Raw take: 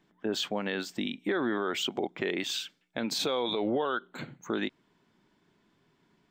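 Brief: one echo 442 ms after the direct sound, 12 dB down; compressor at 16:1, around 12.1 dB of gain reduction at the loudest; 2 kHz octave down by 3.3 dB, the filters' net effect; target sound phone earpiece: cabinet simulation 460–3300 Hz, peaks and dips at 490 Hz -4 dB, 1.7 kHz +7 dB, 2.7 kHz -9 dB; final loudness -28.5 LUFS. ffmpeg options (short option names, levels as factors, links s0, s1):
-af "equalizer=f=2000:t=o:g=-8.5,acompressor=threshold=0.0126:ratio=16,highpass=460,equalizer=f=490:t=q:w=4:g=-4,equalizer=f=1700:t=q:w=4:g=7,equalizer=f=2700:t=q:w=4:g=-9,lowpass=f=3300:w=0.5412,lowpass=f=3300:w=1.3066,aecho=1:1:442:0.251,volume=10"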